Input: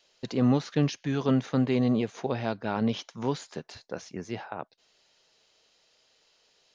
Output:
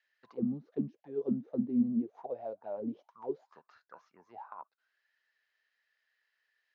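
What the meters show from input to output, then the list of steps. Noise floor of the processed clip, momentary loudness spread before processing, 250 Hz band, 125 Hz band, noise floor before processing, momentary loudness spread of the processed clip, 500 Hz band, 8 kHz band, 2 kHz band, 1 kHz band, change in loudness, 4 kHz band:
-83 dBFS, 16 LU, -6.5 dB, -17.5 dB, -67 dBFS, 18 LU, -8.0 dB, no reading, under -20 dB, -12.0 dB, -7.5 dB, under -30 dB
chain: bass shelf 390 Hz +4 dB; in parallel at -1 dB: compression 6:1, threshold -33 dBFS, peak gain reduction 16.5 dB; on the sum: auto-wah 210–1800 Hz, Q 13, down, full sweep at -15.5 dBFS; peaking EQ 4.9 kHz +2 dB; trim -1 dB

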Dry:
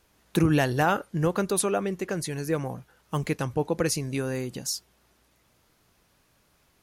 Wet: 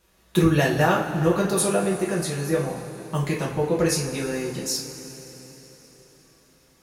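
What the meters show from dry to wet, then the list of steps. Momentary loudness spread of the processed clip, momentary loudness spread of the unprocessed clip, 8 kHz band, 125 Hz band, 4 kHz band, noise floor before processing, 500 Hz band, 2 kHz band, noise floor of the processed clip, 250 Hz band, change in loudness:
14 LU, 9 LU, +4.0 dB, +3.5 dB, +4.5 dB, -66 dBFS, +4.5 dB, +4.0 dB, -59 dBFS, +4.0 dB, +4.0 dB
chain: two-slope reverb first 0.34 s, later 4.3 s, from -18 dB, DRR -5 dB; trim -2.5 dB

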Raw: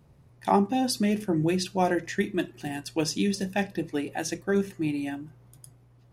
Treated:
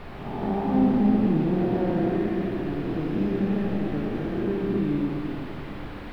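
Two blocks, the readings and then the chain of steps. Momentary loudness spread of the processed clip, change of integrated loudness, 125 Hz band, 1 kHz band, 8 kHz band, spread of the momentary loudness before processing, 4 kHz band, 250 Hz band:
12 LU, +2.5 dB, +5.0 dB, -3.5 dB, under -25 dB, 9 LU, -10.5 dB, +4.5 dB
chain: spectral blur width 498 ms; tilt shelf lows +5.5 dB, about 850 Hz; word length cut 8-bit, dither triangular; added noise pink -40 dBFS; distance through air 450 m; Schroeder reverb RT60 3.2 s, combs from 27 ms, DRR 0.5 dB; trim +2 dB

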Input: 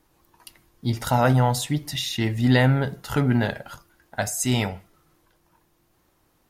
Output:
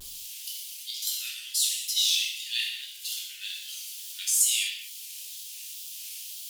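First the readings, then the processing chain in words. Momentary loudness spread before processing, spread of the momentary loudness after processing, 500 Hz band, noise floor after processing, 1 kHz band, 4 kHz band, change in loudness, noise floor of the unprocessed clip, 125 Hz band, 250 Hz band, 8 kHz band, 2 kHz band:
12 LU, 15 LU, under -40 dB, -42 dBFS, under -40 dB, +5.0 dB, -5.5 dB, -66 dBFS, under -40 dB, under -40 dB, +6.5 dB, -7.5 dB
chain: jump at every zero crossing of -34 dBFS; elliptic high-pass 2.9 kHz, stop band 70 dB; wow and flutter 130 cents; gated-style reverb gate 280 ms falling, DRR -3.5 dB

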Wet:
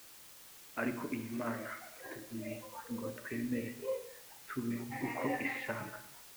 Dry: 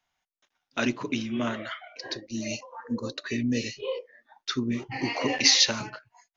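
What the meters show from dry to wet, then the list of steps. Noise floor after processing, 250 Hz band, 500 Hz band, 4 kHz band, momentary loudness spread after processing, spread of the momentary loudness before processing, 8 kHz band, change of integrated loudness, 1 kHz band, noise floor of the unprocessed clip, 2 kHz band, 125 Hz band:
-55 dBFS, -9.0 dB, -7.0 dB, -27.5 dB, 13 LU, 17 LU, no reading, -12.5 dB, -6.5 dB, under -85 dBFS, -9.0 dB, -9.0 dB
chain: steep low-pass 2.2 kHz 36 dB/octave; hum notches 60/120/180/240/300/360/420/480 Hz; word length cut 8-bit, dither triangular; gated-style reverb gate 320 ms falling, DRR 8 dB; trim -7.5 dB

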